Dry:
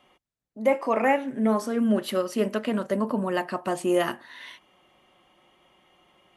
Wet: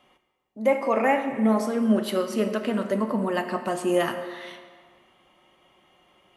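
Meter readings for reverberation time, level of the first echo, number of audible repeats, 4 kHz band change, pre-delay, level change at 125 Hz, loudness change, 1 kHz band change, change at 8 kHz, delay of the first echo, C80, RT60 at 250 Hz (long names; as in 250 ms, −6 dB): 1.7 s, no echo audible, no echo audible, +0.5 dB, 8 ms, +1.5 dB, +1.0 dB, +1.0 dB, +0.5 dB, no echo audible, 9.5 dB, 1.6 s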